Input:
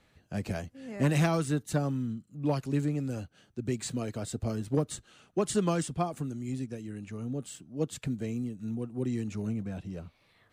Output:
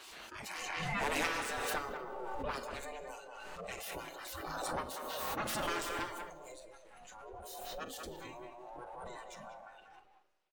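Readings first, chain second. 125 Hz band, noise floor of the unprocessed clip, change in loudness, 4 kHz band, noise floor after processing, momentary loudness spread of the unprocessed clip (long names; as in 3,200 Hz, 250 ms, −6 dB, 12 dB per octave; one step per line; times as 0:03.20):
−21.0 dB, −67 dBFS, −7.0 dB, +1.5 dB, −62 dBFS, 12 LU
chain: lower of the sound and its delayed copy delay 7.2 ms
hum removal 52.78 Hz, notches 11
gate on every frequency bin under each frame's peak −15 dB weak
bass and treble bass 0 dB, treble −4 dB
four-comb reverb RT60 1.8 s, combs from 26 ms, DRR 9.5 dB
noise reduction from a noise print of the clip's start 14 dB
far-end echo of a speakerphone 190 ms, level −7 dB
background raised ahead of every attack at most 20 dB per second
level +1.5 dB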